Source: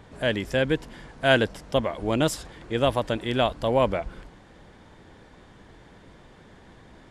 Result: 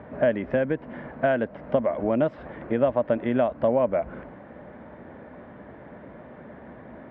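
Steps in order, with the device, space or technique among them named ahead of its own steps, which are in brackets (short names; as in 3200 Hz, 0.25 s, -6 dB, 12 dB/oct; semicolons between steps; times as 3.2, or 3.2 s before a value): bass amplifier (compressor 6:1, threshold -29 dBFS, peak gain reduction 14.5 dB; speaker cabinet 68–2100 Hz, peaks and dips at 100 Hz -7 dB, 240 Hz +7 dB, 600 Hz +10 dB); gain +5 dB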